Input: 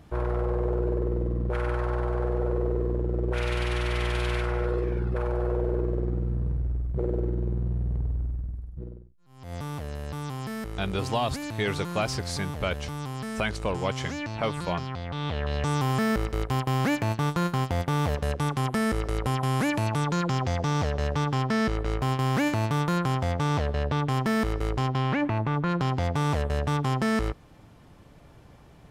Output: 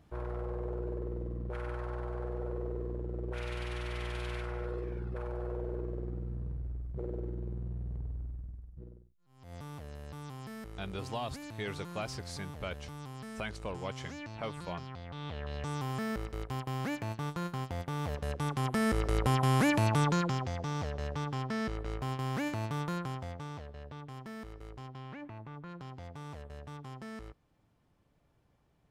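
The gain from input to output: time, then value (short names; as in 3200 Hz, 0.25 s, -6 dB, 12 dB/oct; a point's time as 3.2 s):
17.95 s -10.5 dB
19.18 s -1 dB
20.07 s -1 dB
20.51 s -9.5 dB
22.9 s -9.5 dB
23.68 s -19.5 dB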